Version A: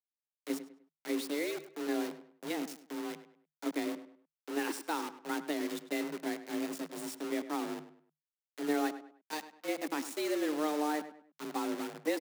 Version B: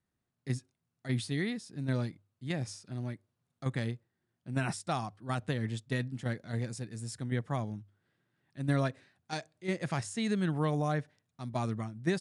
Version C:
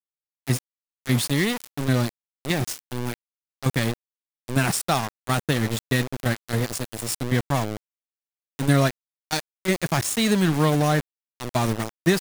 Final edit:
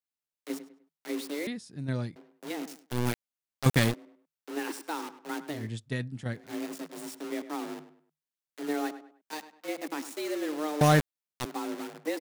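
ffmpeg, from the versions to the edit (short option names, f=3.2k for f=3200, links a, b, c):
-filter_complex "[1:a]asplit=2[a][b];[2:a]asplit=2[c][d];[0:a]asplit=5[e][f][g][h][i];[e]atrim=end=1.472[j];[a]atrim=start=1.468:end=2.162[k];[f]atrim=start=2.158:end=2.99[l];[c]atrim=start=2.75:end=4.07[m];[g]atrim=start=3.83:end=5.71[n];[b]atrim=start=5.47:end=6.55[o];[h]atrim=start=6.31:end=10.812[p];[d]atrim=start=10.808:end=11.452[q];[i]atrim=start=11.448[r];[j][k]acrossfade=d=0.004:c1=hsin:c2=hsin[s];[s][l]acrossfade=d=0.004:c1=hsin:c2=hsin[t];[t][m]acrossfade=d=0.24:c1=tri:c2=tri[u];[u][n]acrossfade=d=0.24:c1=tri:c2=tri[v];[v][o]acrossfade=d=0.24:c1=tri:c2=tri[w];[w][p]acrossfade=d=0.24:c1=tri:c2=tri[x];[x][q]acrossfade=d=0.004:c1=hsin:c2=hsin[y];[y][r]acrossfade=d=0.004:c1=hsin:c2=hsin"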